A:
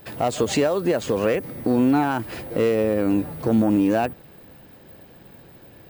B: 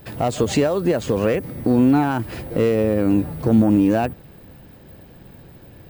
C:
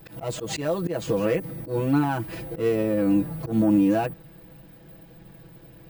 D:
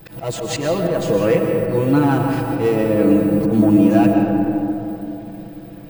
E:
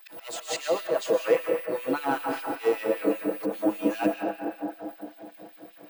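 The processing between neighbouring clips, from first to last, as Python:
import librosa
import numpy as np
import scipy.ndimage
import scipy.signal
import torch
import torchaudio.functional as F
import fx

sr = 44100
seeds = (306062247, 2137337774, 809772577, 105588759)

y1 = fx.low_shelf(x, sr, hz=190.0, db=9.5)
y2 = y1 + 0.97 * np.pad(y1, (int(6.1 * sr / 1000.0), 0))[:len(y1)]
y2 = fx.auto_swell(y2, sr, attack_ms=109.0)
y2 = y2 * 10.0 ** (-7.0 / 20.0)
y3 = fx.rev_freeverb(y2, sr, rt60_s=3.5, hf_ratio=0.3, predelay_ms=85, drr_db=2.0)
y3 = y3 * 10.0 ** (5.5 / 20.0)
y4 = fx.filter_lfo_highpass(y3, sr, shape='sine', hz=5.1, low_hz=380.0, high_hz=2900.0, q=1.2)
y4 = y4 + 10.0 ** (-18.5 / 20.0) * np.pad(y4, (int(242 * sr / 1000.0), 0))[:len(y4)]
y4 = y4 * 10.0 ** (-6.0 / 20.0)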